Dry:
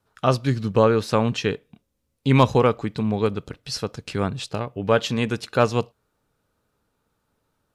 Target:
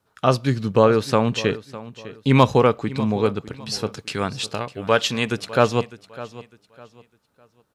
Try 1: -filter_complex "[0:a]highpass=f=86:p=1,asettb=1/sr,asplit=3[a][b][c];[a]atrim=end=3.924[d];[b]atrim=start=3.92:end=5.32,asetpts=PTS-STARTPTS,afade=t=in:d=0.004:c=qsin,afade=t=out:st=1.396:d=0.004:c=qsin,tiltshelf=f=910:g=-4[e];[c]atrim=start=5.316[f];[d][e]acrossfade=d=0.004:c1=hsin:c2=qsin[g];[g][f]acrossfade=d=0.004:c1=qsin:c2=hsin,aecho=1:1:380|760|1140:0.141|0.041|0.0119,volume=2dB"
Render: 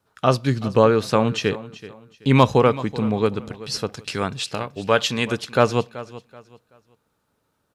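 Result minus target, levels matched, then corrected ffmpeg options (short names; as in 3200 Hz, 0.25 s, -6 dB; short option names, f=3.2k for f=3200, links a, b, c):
echo 0.224 s early
-filter_complex "[0:a]highpass=f=86:p=1,asettb=1/sr,asplit=3[a][b][c];[a]atrim=end=3.924[d];[b]atrim=start=3.92:end=5.32,asetpts=PTS-STARTPTS,afade=t=in:d=0.004:c=qsin,afade=t=out:st=1.396:d=0.004:c=qsin,tiltshelf=f=910:g=-4[e];[c]atrim=start=5.316[f];[d][e]acrossfade=d=0.004:c1=hsin:c2=qsin[g];[g][f]acrossfade=d=0.004:c1=qsin:c2=hsin,aecho=1:1:604|1208|1812:0.141|0.041|0.0119,volume=2dB"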